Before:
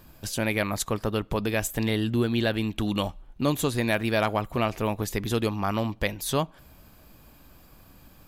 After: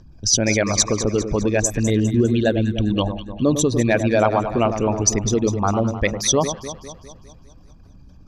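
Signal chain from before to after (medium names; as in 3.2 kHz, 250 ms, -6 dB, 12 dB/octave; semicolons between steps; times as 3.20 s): resonances exaggerated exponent 2; resonant low-pass 5.8 kHz, resonance Q 10; on a send: echo whose repeats swap between lows and highs 101 ms, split 1.3 kHz, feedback 72%, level -8.5 dB; on the sum: trim +6.5 dB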